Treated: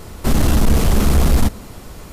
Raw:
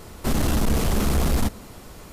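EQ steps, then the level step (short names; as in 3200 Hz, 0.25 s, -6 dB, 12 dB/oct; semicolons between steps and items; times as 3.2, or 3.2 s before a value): low shelf 140 Hz +4.5 dB; +4.5 dB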